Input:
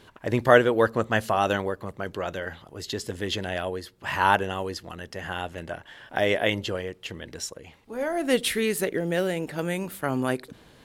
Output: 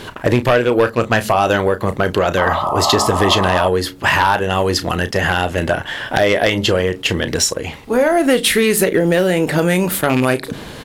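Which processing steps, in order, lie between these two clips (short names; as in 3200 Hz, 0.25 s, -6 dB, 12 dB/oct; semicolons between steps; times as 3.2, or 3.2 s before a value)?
rattling part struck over -27 dBFS, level -23 dBFS; doubler 33 ms -13 dB; de-hum 70.13 Hz, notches 4; compressor 4:1, threshold -32 dBFS, peak gain reduction 18.5 dB; sine folder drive 17 dB, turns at -5.5 dBFS; painted sound noise, 2.37–3.68, 550–1300 Hz -19 dBFS; attack slew limiter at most 530 dB/s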